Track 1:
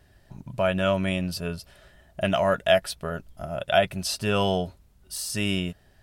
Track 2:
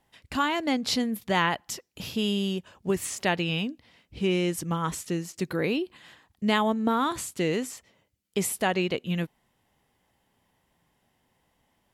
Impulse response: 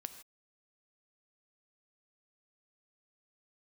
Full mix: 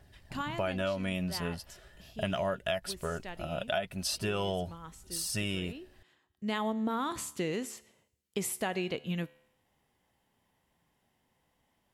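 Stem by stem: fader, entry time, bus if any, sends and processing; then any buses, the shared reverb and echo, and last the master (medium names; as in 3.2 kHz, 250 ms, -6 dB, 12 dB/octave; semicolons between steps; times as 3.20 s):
-3.5 dB, 0.00 s, no send, phaser 0.4 Hz, delay 4.8 ms, feedback 30%
-0.5 dB, 0.00 s, no send, feedback comb 73 Hz, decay 0.77 s, harmonics all, mix 40%; auto duck -14 dB, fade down 0.95 s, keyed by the first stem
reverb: none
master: compression 10:1, threshold -28 dBFS, peak gain reduction 12 dB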